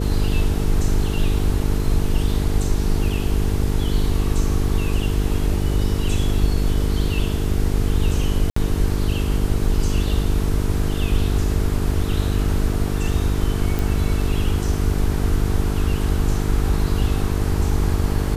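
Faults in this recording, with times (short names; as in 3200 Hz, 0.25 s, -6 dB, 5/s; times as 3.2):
buzz 50 Hz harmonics 9 -23 dBFS
8.5–8.56 gap 64 ms
13.79 pop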